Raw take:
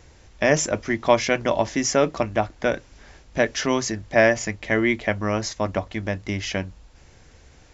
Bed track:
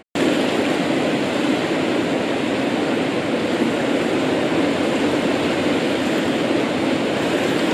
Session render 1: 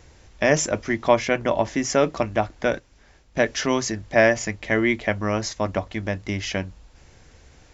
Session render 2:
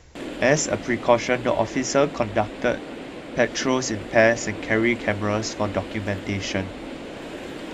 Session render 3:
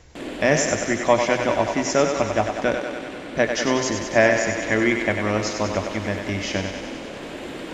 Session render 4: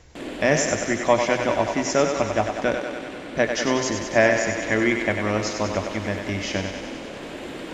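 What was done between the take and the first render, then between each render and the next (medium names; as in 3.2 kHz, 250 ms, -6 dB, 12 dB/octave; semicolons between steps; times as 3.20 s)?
0.94–1.90 s: dynamic bell 5.1 kHz, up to -6 dB, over -40 dBFS, Q 0.92; 2.74–3.47 s: gate -38 dBFS, range -7 dB
add bed track -15.5 dB
thinning echo 96 ms, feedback 73%, high-pass 270 Hz, level -6 dB
trim -1 dB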